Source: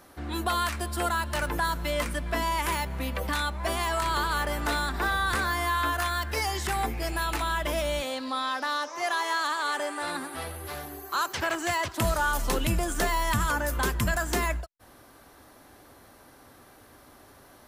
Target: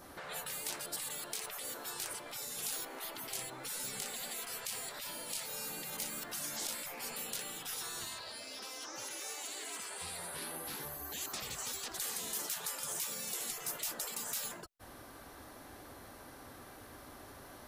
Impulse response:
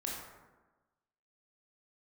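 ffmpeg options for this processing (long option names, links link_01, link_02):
-af "afftfilt=real='re*lt(hypot(re,im),0.0316)':imag='im*lt(hypot(re,im),0.0316)':win_size=1024:overlap=0.75,adynamicequalizer=threshold=0.002:dfrequency=2200:dqfactor=0.74:tfrequency=2200:tqfactor=0.74:attack=5:release=100:ratio=0.375:range=2.5:mode=cutabove:tftype=bell,volume=1dB"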